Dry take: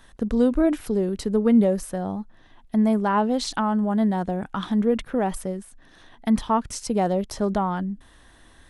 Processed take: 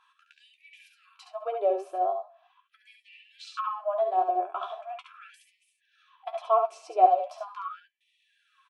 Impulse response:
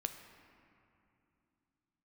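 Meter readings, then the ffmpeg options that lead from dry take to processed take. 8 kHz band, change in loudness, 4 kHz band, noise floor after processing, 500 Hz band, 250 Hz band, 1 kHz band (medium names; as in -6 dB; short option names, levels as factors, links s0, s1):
under -20 dB, -4.5 dB, -12.0 dB, -73 dBFS, -5.0 dB, under -25 dB, +1.0 dB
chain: -filter_complex "[0:a]aecho=1:1:3:0.61,aeval=exprs='0.501*(cos(1*acos(clip(val(0)/0.501,-1,1)))-cos(1*PI/2))+0.00398*(cos(8*acos(clip(val(0)/0.501,-1,1)))-cos(8*PI/2))':c=same,asplit=3[s0][s1][s2];[s0]bandpass=f=730:t=q:w=8,volume=1[s3];[s1]bandpass=f=1090:t=q:w=8,volume=0.501[s4];[s2]bandpass=f=2440:t=q:w=8,volume=0.355[s5];[s3][s4][s5]amix=inputs=3:normalize=0,equalizer=f=210:w=1.1:g=4,aecho=1:1:56|69:0.168|0.531,asplit=2[s6][s7];[1:a]atrim=start_sample=2205,afade=t=out:st=0.34:d=0.01,atrim=end_sample=15435[s8];[s7][s8]afir=irnorm=-1:irlink=0,volume=0.178[s9];[s6][s9]amix=inputs=2:normalize=0,flanger=delay=9.9:depth=3.2:regen=38:speed=1.4:shape=triangular,afftfilt=real='re*gte(b*sr/1024,310*pow(1800/310,0.5+0.5*sin(2*PI*0.4*pts/sr)))':imag='im*gte(b*sr/1024,310*pow(1800/310,0.5+0.5*sin(2*PI*0.4*pts/sr)))':win_size=1024:overlap=0.75,volume=2.66"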